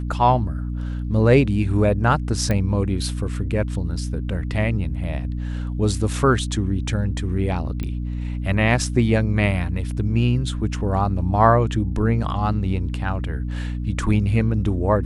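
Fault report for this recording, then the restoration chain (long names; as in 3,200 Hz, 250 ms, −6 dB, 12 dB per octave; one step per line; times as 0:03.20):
mains hum 60 Hz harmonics 5 −26 dBFS
0:02.51: click −11 dBFS
0:07.83: click −17 dBFS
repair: click removal
hum removal 60 Hz, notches 5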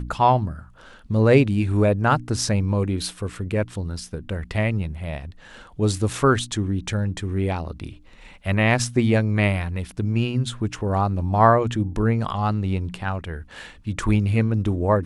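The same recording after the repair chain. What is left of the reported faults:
none of them is left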